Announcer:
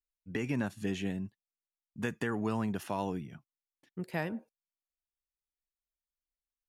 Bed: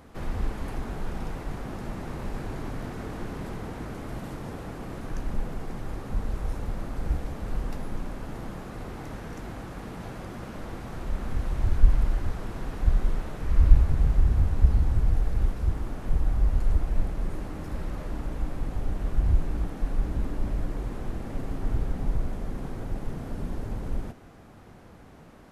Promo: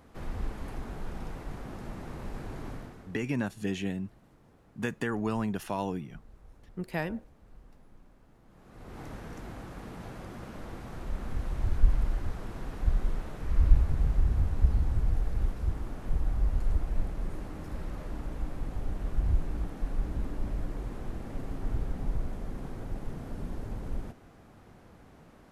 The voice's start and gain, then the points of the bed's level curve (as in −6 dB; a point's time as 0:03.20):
2.80 s, +2.0 dB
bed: 0:02.73 −5.5 dB
0:03.30 −23.5 dB
0:08.44 −23.5 dB
0:09.00 −4.5 dB